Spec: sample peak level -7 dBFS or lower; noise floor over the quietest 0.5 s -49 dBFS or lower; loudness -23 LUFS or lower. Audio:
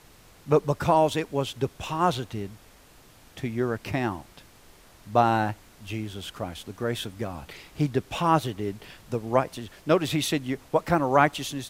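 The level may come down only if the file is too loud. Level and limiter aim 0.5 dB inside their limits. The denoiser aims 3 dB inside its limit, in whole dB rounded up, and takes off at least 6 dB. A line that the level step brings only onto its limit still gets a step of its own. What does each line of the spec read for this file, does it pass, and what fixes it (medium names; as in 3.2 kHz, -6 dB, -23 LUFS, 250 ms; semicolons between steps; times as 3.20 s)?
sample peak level -5.0 dBFS: fail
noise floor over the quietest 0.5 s -53 dBFS: pass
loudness -26.5 LUFS: pass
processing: peak limiter -7.5 dBFS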